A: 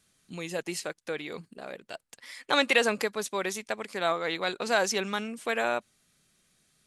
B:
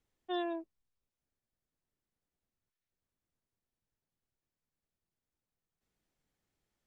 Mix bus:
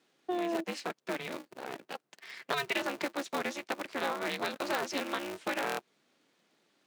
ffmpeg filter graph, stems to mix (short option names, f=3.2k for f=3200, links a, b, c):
-filter_complex "[0:a]lowpass=4k,aeval=exprs='val(0)*sgn(sin(2*PI*140*n/s))':c=same,volume=-0.5dB[a];[1:a]equalizer=f=490:w=0.36:g=13,alimiter=limit=-23.5dB:level=0:latency=1,volume=1.5dB[b];[a][b]amix=inputs=2:normalize=0,highpass=f=170:w=0.5412,highpass=f=170:w=1.3066,acompressor=threshold=-29dB:ratio=5"